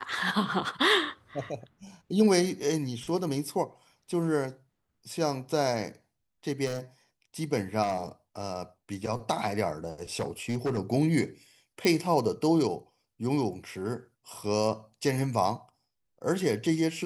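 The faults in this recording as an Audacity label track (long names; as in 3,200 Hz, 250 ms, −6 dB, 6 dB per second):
6.650000	6.790000	clipping −27.5 dBFS
7.820000	7.970000	clipping −23.5 dBFS
10.150000	10.790000	clipping −24.5 dBFS
11.850000	11.850000	click −13 dBFS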